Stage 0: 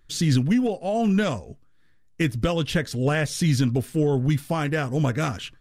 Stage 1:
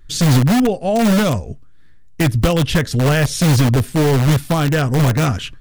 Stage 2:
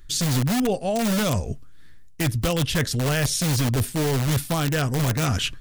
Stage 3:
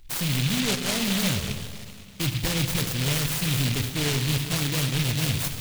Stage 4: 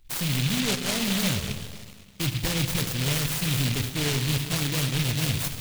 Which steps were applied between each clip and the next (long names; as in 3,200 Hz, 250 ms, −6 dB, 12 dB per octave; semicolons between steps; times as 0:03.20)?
low-shelf EQ 130 Hz +9.5 dB; in parallel at −6 dB: wrap-around overflow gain 15 dB; on the sum: level +3.5 dB
high-shelf EQ 3,300 Hz +8 dB; reversed playback; downward compressor 6 to 1, threshold −20 dBFS, peak gain reduction 11.5 dB; reversed playback
dense smooth reverb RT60 2.5 s, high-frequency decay 0.9×, DRR 5.5 dB; short delay modulated by noise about 3,000 Hz, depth 0.38 ms; level −4 dB
mu-law and A-law mismatch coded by A